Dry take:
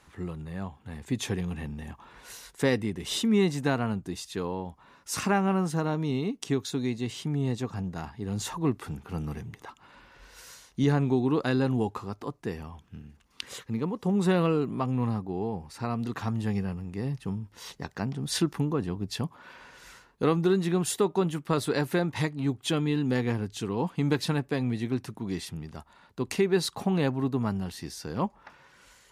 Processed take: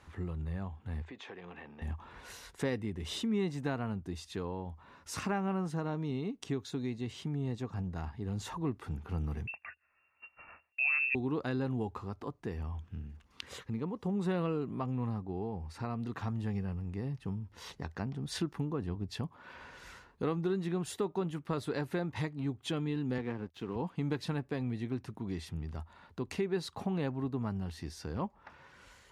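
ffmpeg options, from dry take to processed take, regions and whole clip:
-filter_complex "[0:a]asettb=1/sr,asplit=3[a][b][c];[a]atrim=end=1.024[d];[b]atrim=start=1.02:end=1.82,asetpts=PTS-STARTPTS,afade=t=in:d=0.004:c=qsin,afade=t=out:st=0.796:d=0.004:c=qsin,highpass=500,lowpass=2.9k,acompressor=threshold=-42dB:ratio=4:attack=3.2:release=140:knee=1:detection=peak[e];[c]atrim=start=1.816[f];[d][e]acrossfade=d=0.004:c1=hsin:c2=qsin[g];[g][f]acrossfade=d=0.004:c1=qsin:c2=hsin,asettb=1/sr,asplit=3[h][i][j];[h]atrim=end=9.474[k];[i]atrim=start=9.47:end=11.15,asetpts=PTS-STARTPTS,afade=t=in:d=0.004:c=qsin,afade=t=out:st=1.676:d=0.004:c=qsin,agate=range=-21dB:threshold=-50dB:ratio=16:release=100:detection=peak,lowshelf=f=180:g=10,lowpass=f=2.4k:t=q:w=0.5098,lowpass=f=2.4k:t=q:w=0.6013,lowpass=f=2.4k:t=q:w=0.9,lowpass=f=2.4k:t=q:w=2.563,afreqshift=-2800[l];[j]atrim=start=11.146[m];[k][l]acrossfade=d=0.004:c1=hsin:c2=qsin[n];[n][m]acrossfade=d=0.004:c1=qsin:c2=hsin,asettb=1/sr,asplit=3[o][p][q];[o]atrim=end=23.184[r];[p]atrim=start=23.18:end=23.76,asetpts=PTS-STARTPTS,afade=t=in:d=0.004:c=qsin,afade=t=out:st=0.576:d=0.004:c=qsin,highpass=160,lowpass=3.5k,aeval=exprs='sgn(val(0))*max(abs(val(0))-0.00316,0)':c=same[s];[q]atrim=start=23.756[t];[r][s]acrossfade=d=0.004:c1=hsin:c2=qsin[u];[u][t]acrossfade=d=0.004:c1=qsin:c2=hsin,aemphasis=mode=reproduction:type=cd,acompressor=threshold=-46dB:ratio=1.5,equalizer=f=80:w=3.8:g=11.5"

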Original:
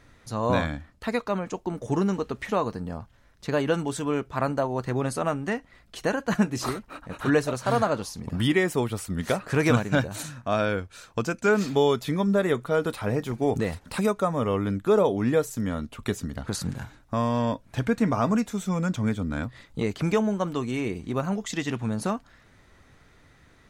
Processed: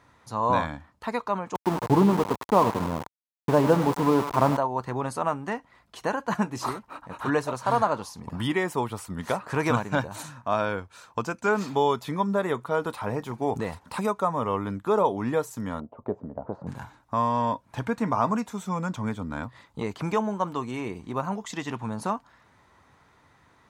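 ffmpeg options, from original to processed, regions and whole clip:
-filter_complex "[0:a]asettb=1/sr,asplit=3[a][b][c];[a]atrim=end=1.554[d];[b]atrim=start=1.55:end=4.57,asetpts=PTS-STARTPTS,afade=t=in:d=0.004:c=qsin,afade=t=out:st=3.016:d=0.004:c=qsin,tiltshelf=f=1.3k:g=10,aecho=1:1:99|198|297|396|495|594:0.224|0.125|0.0702|0.0393|0.022|0.0123,atrim=end_sample=133182,aeval=exprs='val(0)*gte(abs(val(0)),0.0562)':c=same[e];[c]atrim=start=4.566[f];[d][e]acrossfade=d=0.004:c1=hsin:c2=qsin[g];[g][f]acrossfade=d=0.004:c1=qsin:c2=hsin,asettb=1/sr,asplit=3[h][i][j];[h]atrim=end=15.804[k];[i]atrim=start=15.8:end=16.67,asetpts=PTS-STARTPTS,afade=t=in:d=0.004:c=qsin,afade=t=out:st=0.866:d=0.004:c=qsin,lowpass=f=610:t=q:w=3,lowshelf=f=100:g=-9.5[l];[j]atrim=start=16.666[m];[k][l]acrossfade=d=0.004:c1=hsin:c2=qsin[n];[n][m]acrossfade=d=0.004:c1=qsin:c2=hsin,highpass=72,equalizer=f=960:w=2.1:g=12,volume=-4.5dB"

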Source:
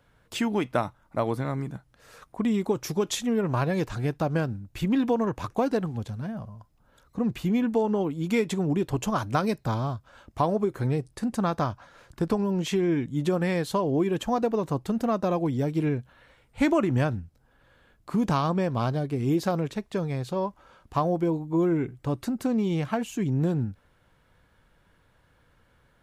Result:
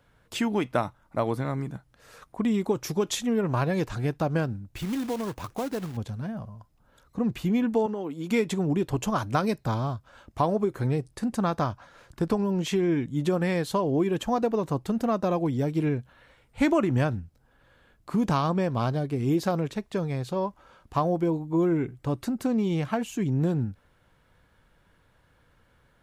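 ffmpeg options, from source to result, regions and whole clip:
-filter_complex "[0:a]asettb=1/sr,asplit=3[a][b][c];[a]atrim=end=4.764[d];[b]atrim=start=4.76:end=5.97,asetpts=PTS-STARTPTS,afade=t=in:d=0.004:c=qsin,afade=t=out:st=1.206:d=0.004:c=qsin,acompressor=threshold=-37dB:ratio=1.5:attack=3.2:release=140:knee=1:detection=peak,acrusher=bits=3:mode=log:mix=0:aa=0.000001[e];[c]atrim=start=5.966[f];[d][e]acrossfade=d=0.004:c1=hsin:c2=qsin[g];[g][f]acrossfade=d=0.004:c1=qsin:c2=hsin,asettb=1/sr,asplit=3[h][i][j];[h]atrim=end=7.864[k];[i]atrim=start=7.86:end=8.31,asetpts=PTS-STARTPTS,afade=t=in:d=0.004:c=qsin,afade=t=out:st=0.446:d=0.004:c=qsin,highpass=220,acompressor=threshold=-28dB:ratio=4:attack=3.2:release=140:knee=1:detection=peak[l];[j]atrim=start=8.306[m];[k][l]acrossfade=d=0.004:c1=hsin:c2=qsin[n];[n][m]acrossfade=d=0.004:c1=qsin:c2=hsin"

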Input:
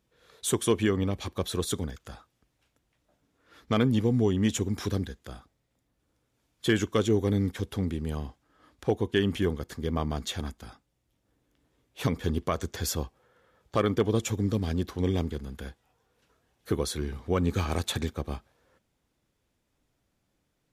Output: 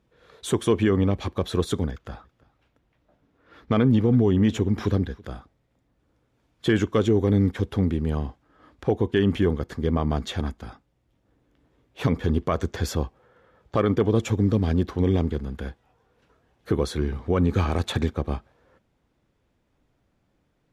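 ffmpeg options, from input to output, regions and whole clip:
-filter_complex "[0:a]asettb=1/sr,asplit=3[a][b][c];[a]atrim=end=1.914[d];[b]atrim=start=1.91:end=5.25,asetpts=PTS-STARTPTS,afade=t=in:d=0.004:c=qsin,afade=t=out:st=3.336:d=0.004:c=qsin,equalizer=f=8.4k:w=0.97:g=-5.5,aecho=1:1:328:0.0668,atrim=end_sample=147294[e];[c]atrim=start=5.246[f];[d][e]acrossfade=d=0.004:c1=hsin:c2=qsin[g];[g][f]acrossfade=d=0.004:c1=qsin:c2=hsin,lowpass=f=1.9k:p=1,alimiter=limit=-17.5dB:level=0:latency=1:release=37,volume=7dB"

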